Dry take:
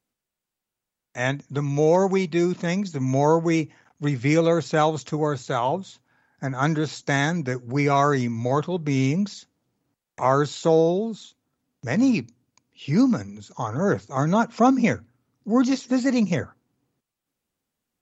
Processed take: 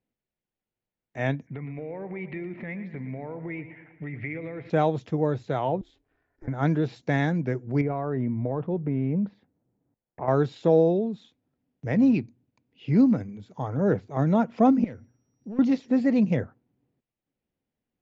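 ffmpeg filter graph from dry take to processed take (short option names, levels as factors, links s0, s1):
-filter_complex "[0:a]asettb=1/sr,asplit=3[s0][s1][s2];[s0]atrim=end=1.474[s3];[s1]atrim=start=1.47:end=4.7,asetpts=PTS-STARTPTS,afade=t=in:d=0.004:c=qsin,afade=t=out:st=3.226:d=0.004:c=qsin,acompressor=threshold=0.0251:ratio=8:attack=3.2:release=140:knee=1:detection=peak,lowpass=f=2100:t=q:w=5.8,aecho=1:1:116|232|348|464|580|696:0.224|0.128|0.0727|0.0415|0.0236|0.0135,atrim=end_sample=142443[s4];[s2]atrim=start=4.696[s5];[s3][s4]acrossfade=d=0.004:c1=hsin:c2=qsin[s6];[s6][s5]acrossfade=d=0.004:c1=qsin:c2=hsin,asettb=1/sr,asplit=3[s7][s8][s9];[s7]atrim=end=5.814[s10];[s8]atrim=start=5.81:end=6.48,asetpts=PTS-STARTPTS,afade=t=in:d=0.004:c=qsin,afade=t=out:st=0.666:d=0.004:c=qsin,equalizer=f=850:w=0.52:g=-3.5,acompressor=threshold=0.00794:ratio=2.5:attack=3.2:release=140:knee=1:detection=peak,aeval=exprs='val(0)*sin(2*PI*160*n/s)':c=same[s11];[s9]atrim=start=6.476[s12];[s10][s11]acrossfade=d=0.004:c1=hsin:c2=qsin[s13];[s13][s12]acrossfade=d=0.004:c1=qsin:c2=hsin,asettb=1/sr,asplit=3[s14][s15][s16];[s14]atrim=end=7.814[s17];[s15]atrim=start=7.81:end=10.28,asetpts=PTS-STARTPTS,afade=t=in:d=0.004:c=qsin,afade=t=out:st=2.466:d=0.004:c=qsin,acompressor=threshold=0.0891:ratio=6:attack=3.2:release=140:knee=1:detection=peak,lowpass=1500[s18];[s16]atrim=start=10.276[s19];[s17][s18]acrossfade=d=0.004:c1=hsin:c2=qsin[s20];[s20][s19]acrossfade=d=0.004:c1=qsin:c2=hsin,asettb=1/sr,asplit=3[s21][s22][s23];[s21]atrim=end=14.844[s24];[s22]atrim=start=14.84:end=15.59,asetpts=PTS-STARTPTS,afade=t=in:d=0.004:c=qsin,afade=t=out:st=0.746:d=0.004:c=qsin,acompressor=threshold=0.0158:ratio=3:attack=3.2:release=140:knee=1:detection=peak,volume=33.5,asoftclip=hard,volume=0.0299,aeval=exprs='val(0)+0.000794*sin(2*PI*5700*n/s)':c=same[s25];[s23]atrim=start=15.586[s26];[s24][s25]acrossfade=d=0.004:c1=hsin:c2=qsin[s27];[s27][s26]acrossfade=d=0.004:c1=qsin:c2=hsin,lowpass=2100,equalizer=f=1200:t=o:w=1:g=-9.5"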